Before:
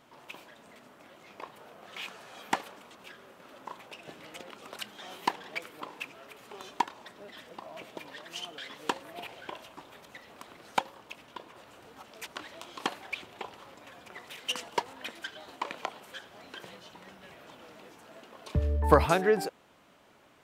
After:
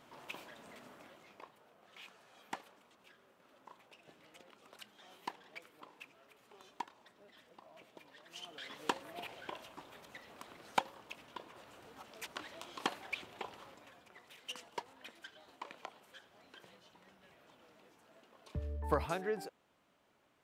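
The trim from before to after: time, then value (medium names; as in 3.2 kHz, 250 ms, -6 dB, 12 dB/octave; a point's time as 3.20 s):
0.94 s -1 dB
1.60 s -14 dB
8.16 s -14 dB
8.72 s -4 dB
13.63 s -4 dB
14.11 s -12.5 dB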